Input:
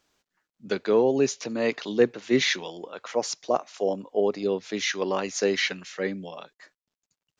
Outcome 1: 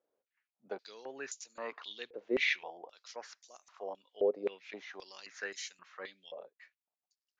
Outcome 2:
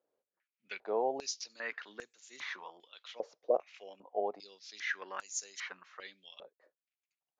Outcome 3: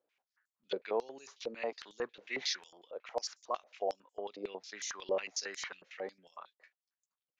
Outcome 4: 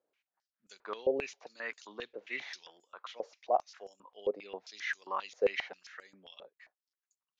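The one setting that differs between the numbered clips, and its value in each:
step-sequenced band-pass, rate: 3.8 Hz, 2.5 Hz, 11 Hz, 7.5 Hz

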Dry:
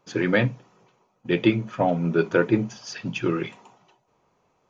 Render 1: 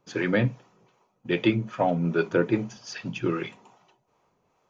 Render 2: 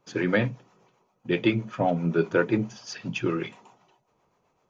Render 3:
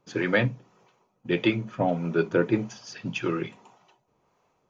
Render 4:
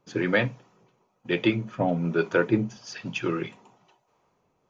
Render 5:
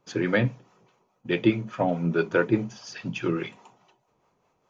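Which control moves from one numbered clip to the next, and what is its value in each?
harmonic tremolo, rate: 2.5 Hz, 7.7 Hz, 1.7 Hz, 1.1 Hz, 4.8 Hz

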